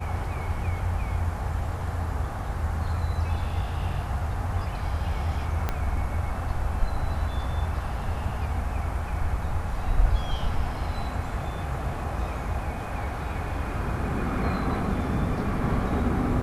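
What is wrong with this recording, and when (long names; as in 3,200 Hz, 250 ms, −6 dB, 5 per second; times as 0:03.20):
0:05.69: click −13 dBFS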